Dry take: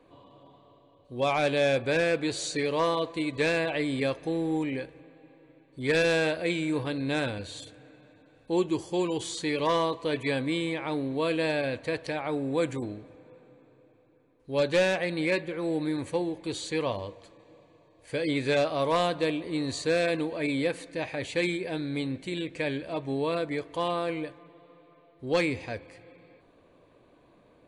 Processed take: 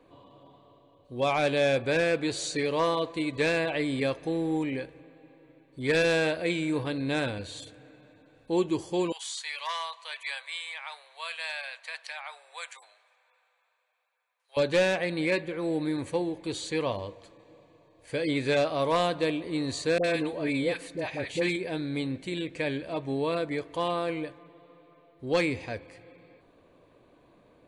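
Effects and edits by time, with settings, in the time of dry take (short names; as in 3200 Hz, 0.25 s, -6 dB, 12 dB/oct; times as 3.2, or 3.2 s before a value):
9.12–14.57 Bessel high-pass 1300 Hz, order 8
19.98–21.56 dispersion highs, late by 61 ms, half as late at 820 Hz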